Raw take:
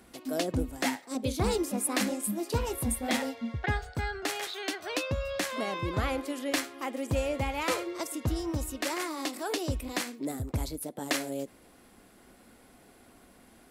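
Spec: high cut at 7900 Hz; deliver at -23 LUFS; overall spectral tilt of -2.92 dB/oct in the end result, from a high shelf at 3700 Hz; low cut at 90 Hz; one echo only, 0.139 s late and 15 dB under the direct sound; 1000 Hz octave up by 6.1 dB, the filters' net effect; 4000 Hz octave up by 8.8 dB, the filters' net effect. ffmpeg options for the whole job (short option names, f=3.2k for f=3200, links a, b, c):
-af "highpass=90,lowpass=7.9k,equalizer=f=1k:t=o:g=7,highshelf=f=3.7k:g=5,equalizer=f=4k:t=o:g=7.5,aecho=1:1:139:0.178,volume=5.5dB"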